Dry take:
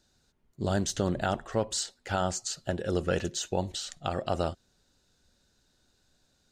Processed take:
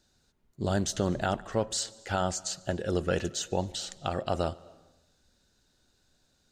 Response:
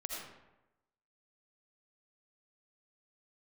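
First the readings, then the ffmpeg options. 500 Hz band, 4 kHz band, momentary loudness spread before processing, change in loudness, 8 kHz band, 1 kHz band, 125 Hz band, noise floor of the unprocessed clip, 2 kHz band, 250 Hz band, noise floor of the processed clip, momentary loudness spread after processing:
0.0 dB, 0.0 dB, 5 LU, 0.0 dB, 0.0 dB, 0.0 dB, 0.0 dB, -71 dBFS, 0.0 dB, 0.0 dB, -71 dBFS, 5 LU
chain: -filter_complex "[0:a]asplit=2[s0][s1];[1:a]atrim=start_sample=2205,adelay=145[s2];[s1][s2]afir=irnorm=-1:irlink=0,volume=0.0794[s3];[s0][s3]amix=inputs=2:normalize=0"

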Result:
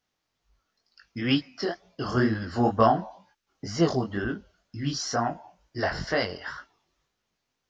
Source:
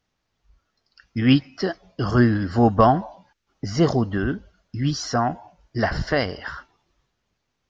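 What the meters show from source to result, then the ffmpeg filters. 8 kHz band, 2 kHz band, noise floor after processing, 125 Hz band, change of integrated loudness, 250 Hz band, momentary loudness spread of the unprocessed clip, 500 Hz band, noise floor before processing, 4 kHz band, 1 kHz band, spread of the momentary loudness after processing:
no reading, -3.5 dB, -81 dBFS, -8.5 dB, -5.5 dB, -6.5 dB, 17 LU, -4.5 dB, -77 dBFS, -2.0 dB, -4.5 dB, 19 LU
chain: -af "lowshelf=f=140:g=-9,flanger=delay=17.5:depth=6.7:speed=2.1,highshelf=f=5000:g=5,volume=0.891"

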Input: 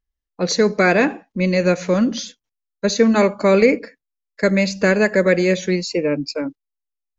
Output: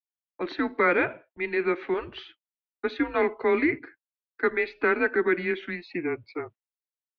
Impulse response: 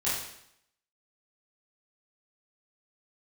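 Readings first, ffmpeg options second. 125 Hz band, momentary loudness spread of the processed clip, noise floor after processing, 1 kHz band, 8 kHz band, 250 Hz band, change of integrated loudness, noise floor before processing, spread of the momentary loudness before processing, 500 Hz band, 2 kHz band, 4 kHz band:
-20.5 dB, 13 LU, under -85 dBFS, -5.5 dB, no reading, -12.0 dB, -9.0 dB, -82 dBFS, 11 LU, -9.5 dB, -5.5 dB, -16.5 dB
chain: -af "agate=range=0.0224:threshold=0.0126:ratio=3:detection=peak,highpass=f=540:t=q:w=0.5412,highpass=f=540:t=q:w=1.307,lowpass=f=3200:t=q:w=0.5176,lowpass=f=3200:t=q:w=0.7071,lowpass=f=3200:t=q:w=1.932,afreqshift=-170,adynamicequalizer=threshold=0.0224:dfrequency=1000:dqfactor=0.77:tfrequency=1000:tqfactor=0.77:attack=5:release=100:ratio=0.375:range=2.5:mode=cutabove:tftype=bell,volume=0.668"

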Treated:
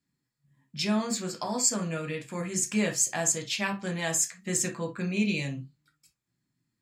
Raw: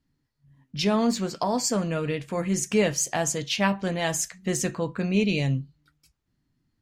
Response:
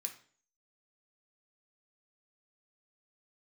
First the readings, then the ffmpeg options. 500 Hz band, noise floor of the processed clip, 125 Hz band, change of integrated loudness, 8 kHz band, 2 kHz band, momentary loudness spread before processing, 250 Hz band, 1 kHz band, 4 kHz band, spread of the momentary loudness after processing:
-7.5 dB, -83 dBFS, -6.0 dB, -2.5 dB, +2.0 dB, -2.0 dB, 6 LU, -4.5 dB, -6.5 dB, -3.0 dB, 9 LU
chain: -filter_complex "[1:a]atrim=start_sample=2205,atrim=end_sample=3087[s0];[0:a][s0]afir=irnorm=-1:irlink=0"

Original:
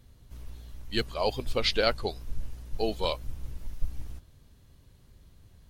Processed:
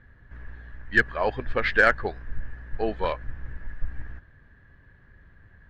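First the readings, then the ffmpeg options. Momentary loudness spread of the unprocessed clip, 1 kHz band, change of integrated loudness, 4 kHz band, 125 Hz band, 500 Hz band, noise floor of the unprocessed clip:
20 LU, +6.0 dB, +6.5 dB, -9.0 dB, +1.5 dB, +2.5 dB, -58 dBFS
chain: -af "lowpass=f=1700:t=q:w=14,aeval=exprs='0.562*(cos(1*acos(clip(val(0)/0.562,-1,1)))-cos(1*PI/2))+0.0112*(cos(8*acos(clip(val(0)/0.562,-1,1)))-cos(8*PI/2))':c=same,volume=1.19"

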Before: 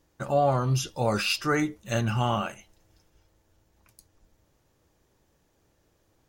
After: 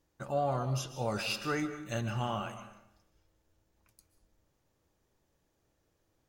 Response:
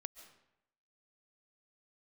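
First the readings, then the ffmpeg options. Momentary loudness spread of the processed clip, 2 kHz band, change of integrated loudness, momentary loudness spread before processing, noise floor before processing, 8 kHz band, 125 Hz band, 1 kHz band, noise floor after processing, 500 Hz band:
8 LU, -8.0 dB, -8.0 dB, 5 LU, -69 dBFS, -8.0 dB, -8.0 dB, -8.0 dB, -77 dBFS, -8.0 dB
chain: -filter_complex "[1:a]atrim=start_sample=2205[s0];[0:a][s0]afir=irnorm=-1:irlink=0,volume=0.668"

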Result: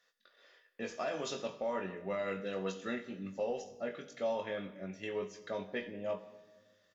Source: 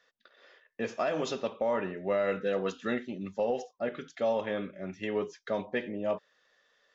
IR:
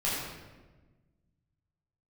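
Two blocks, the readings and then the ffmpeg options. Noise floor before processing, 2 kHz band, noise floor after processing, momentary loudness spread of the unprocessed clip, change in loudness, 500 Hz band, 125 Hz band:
-75 dBFS, -5.0 dB, -73 dBFS, 8 LU, -6.5 dB, -6.5 dB, -5.0 dB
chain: -filter_complex "[0:a]aemphasis=mode=production:type=cd,asplit=2[s0][s1];[s1]adelay=21,volume=0.473[s2];[s0][s2]amix=inputs=2:normalize=0,asplit=2[s3][s4];[1:a]atrim=start_sample=2205,highshelf=f=4600:g=11[s5];[s4][s5]afir=irnorm=-1:irlink=0,volume=0.0944[s6];[s3][s6]amix=inputs=2:normalize=0,volume=0.398"

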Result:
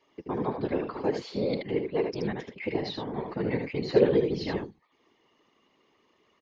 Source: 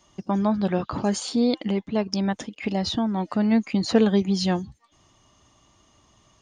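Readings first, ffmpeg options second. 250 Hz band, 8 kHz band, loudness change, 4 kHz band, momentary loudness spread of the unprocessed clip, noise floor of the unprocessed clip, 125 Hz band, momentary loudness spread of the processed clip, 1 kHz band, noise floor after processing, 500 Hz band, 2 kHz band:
-9.5 dB, under -20 dB, -5.5 dB, -9.5 dB, 8 LU, -61 dBFS, -6.5 dB, 11 LU, -7.0 dB, -69 dBFS, 0.0 dB, -3.0 dB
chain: -af "highpass=f=200:w=0.5412,highpass=f=200:w=1.3066,equalizer=f=220:t=q:w=4:g=-6,equalizer=f=410:t=q:w=4:g=10,equalizer=f=670:t=q:w=4:g=-6,equalizer=f=1300:t=q:w=4:g=-5,equalizer=f=2100:t=q:w=4:g=6,equalizer=f=3400:t=q:w=4:g=-5,lowpass=f=4200:w=0.5412,lowpass=f=4200:w=1.3066,aecho=1:1:77:0.531,afftfilt=real='hypot(re,im)*cos(2*PI*random(0))':imag='hypot(re,im)*sin(2*PI*random(1))':win_size=512:overlap=0.75"

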